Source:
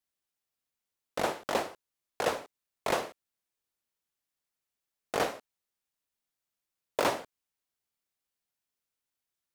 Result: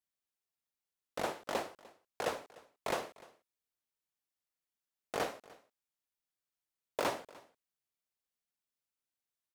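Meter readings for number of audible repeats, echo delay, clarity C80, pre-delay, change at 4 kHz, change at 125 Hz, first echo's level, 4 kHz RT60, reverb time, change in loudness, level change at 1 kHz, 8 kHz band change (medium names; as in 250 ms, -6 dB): 1, 299 ms, no reverb, no reverb, -6.0 dB, -6.0 dB, -22.0 dB, no reverb, no reverb, -6.0 dB, -6.0 dB, -6.0 dB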